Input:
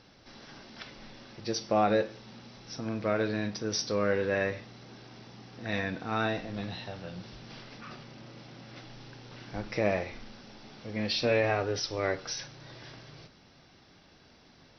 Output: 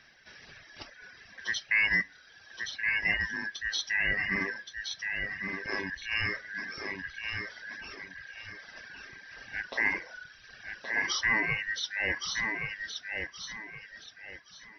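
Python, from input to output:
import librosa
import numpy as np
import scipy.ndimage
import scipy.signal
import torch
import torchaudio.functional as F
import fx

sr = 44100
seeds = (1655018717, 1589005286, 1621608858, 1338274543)

y = fx.band_shuffle(x, sr, order='2143')
y = fx.echo_feedback(y, sr, ms=1121, feedback_pct=30, wet_db=-5.0)
y = fx.dereverb_blind(y, sr, rt60_s=1.2)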